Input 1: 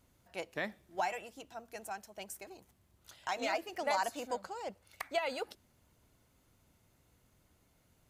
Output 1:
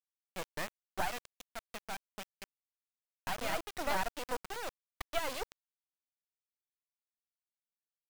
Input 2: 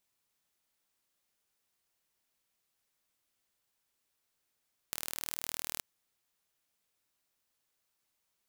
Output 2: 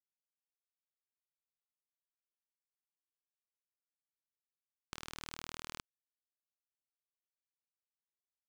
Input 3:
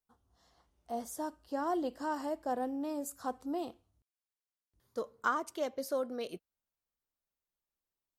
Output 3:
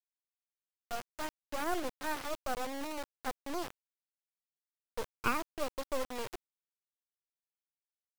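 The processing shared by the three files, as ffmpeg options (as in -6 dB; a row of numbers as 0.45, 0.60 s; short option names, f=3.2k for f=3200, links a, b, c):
-filter_complex "[0:a]acrossover=split=250 4400:gain=0.141 1 0.0631[a][b][c];[a][b][c]amix=inputs=3:normalize=0,acrossover=split=230[d][e];[d]acompressor=threshold=-51dB:ratio=6[f];[f][e]amix=inputs=2:normalize=0,acrusher=bits=4:dc=4:mix=0:aa=0.000001,volume=3dB"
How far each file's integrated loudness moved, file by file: -1.0, -9.0, -1.5 LU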